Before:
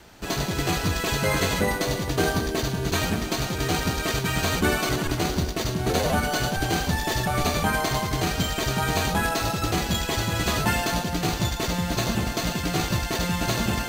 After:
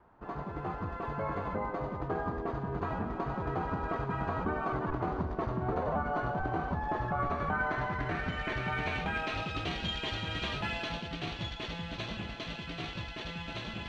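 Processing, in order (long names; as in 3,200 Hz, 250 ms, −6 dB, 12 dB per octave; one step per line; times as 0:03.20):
source passing by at 0:05.62, 13 m/s, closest 16 metres
downward compressor 10 to 1, threshold −30 dBFS, peak gain reduction 12 dB
low-pass filter sweep 1,100 Hz → 3,100 Hz, 0:06.88–0:09.69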